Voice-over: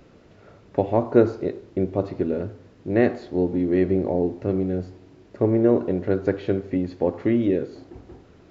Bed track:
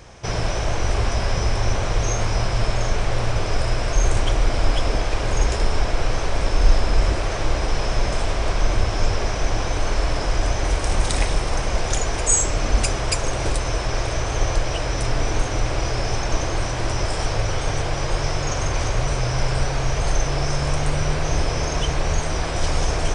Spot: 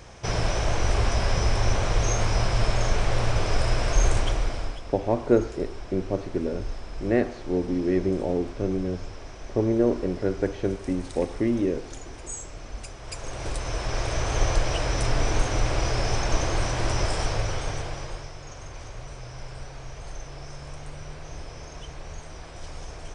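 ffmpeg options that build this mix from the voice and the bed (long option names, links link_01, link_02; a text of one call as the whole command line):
ffmpeg -i stem1.wav -i stem2.wav -filter_complex "[0:a]adelay=4150,volume=-3.5dB[link_01];[1:a]volume=14.5dB,afade=type=out:start_time=4.03:duration=0.77:silence=0.149624,afade=type=in:start_time=12.99:duration=1.39:silence=0.149624,afade=type=out:start_time=17.03:duration=1.27:silence=0.16788[link_02];[link_01][link_02]amix=inputs=2:normalize=0" out.wav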